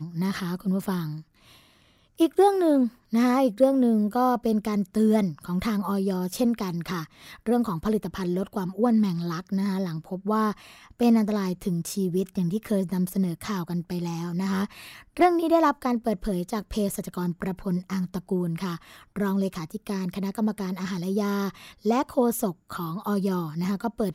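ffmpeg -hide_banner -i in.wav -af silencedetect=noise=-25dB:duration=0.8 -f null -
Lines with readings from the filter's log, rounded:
silence_start: 1.05
silence_end: 2.20 | silence_duration: 1.16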